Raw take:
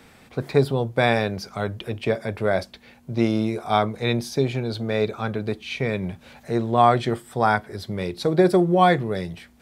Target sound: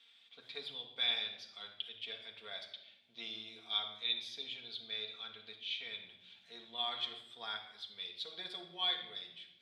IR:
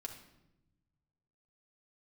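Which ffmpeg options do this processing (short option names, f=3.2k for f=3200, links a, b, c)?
-filter_complex "[0:a]bandpass=f=3.4k:t=q:w=9:csg=0[a];[1:a]atrim=start_sample=2205[b];[a][b]afir=irnorm=-1:irlink=0,volume=6dB"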